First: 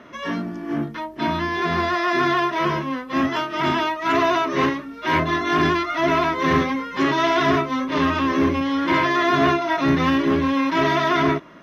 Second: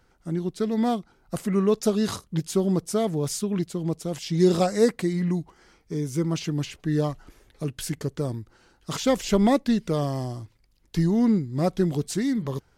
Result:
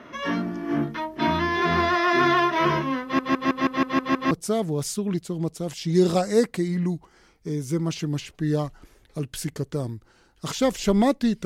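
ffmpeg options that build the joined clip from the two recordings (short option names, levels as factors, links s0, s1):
-filter_complex "[0:a]apad=whole_dur=11.45,atrim=end=11.45,asplit=8[s0][s1][s2][s3][s4][s5][s6][s7];[s0]atrim=end=3.192[s8];[s1]atrim=start=3.028:end=3.192[s9];[s2]atrim=start=3.028:end=3.192[s10];[s3]atrim=start=3.028:end=3.192[s11];[s4]atrim=start=3.028:end=3.192[s12];[s5]atrim=start=3.028:end=3.192[s13];[s6]atrim=start=3.028:end=3.192[s14];[s7]atrim=start=3.028:end=3.192[s15];[1:a]atrim=start=2.758:end=9.9[s16];[s8][s9]acrossfade=d=0.004:c1=hsin:c2=hsin[s17];[s17][s10]acrossfade=d=0.004:c1=hsin:c2=hsin[s18];[s18][s11]acrossfade=d=0.004:c1=hsin:c2=hsin[s19];[s19][s12]acrossfade=d=0.004:c1=hsin:c2=hsin[s20];[s20][s13]acrossfade=d=0.004:c1=hsin:c2=hsin[s21];[s21][s14]acrossfade=d=0.004:c1=hsin:c2=hsin[s22];[s22][s15]acrossfade=d=0.004:c1=hsin:c2=hsin[s23];[s23][s16]acrossfade=d=0.004:c1=hsin:c2=hsin"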